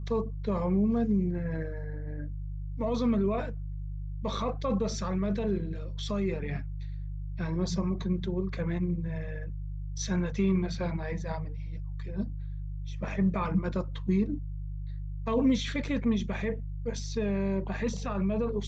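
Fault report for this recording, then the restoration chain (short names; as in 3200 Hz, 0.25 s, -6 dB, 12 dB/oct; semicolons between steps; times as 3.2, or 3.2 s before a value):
hum 50 Hz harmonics 3 -36 dBFS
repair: de-hum 50 Hz, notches 3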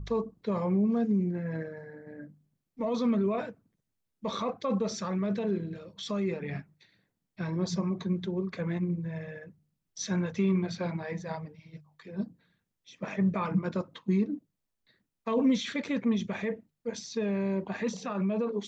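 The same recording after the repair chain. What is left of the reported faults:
none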